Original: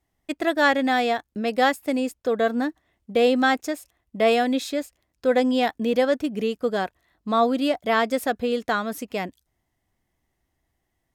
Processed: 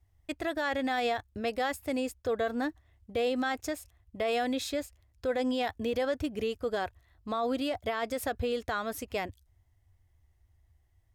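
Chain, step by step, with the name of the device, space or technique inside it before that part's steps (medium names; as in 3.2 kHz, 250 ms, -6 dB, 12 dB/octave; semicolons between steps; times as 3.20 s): car stereo with a boomy subwoofer (resonant low shelf 130 Hz +12 dB, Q 3; peak limiter -19 dBFS, peak gain reduction 10 dB); trim -3.5 dB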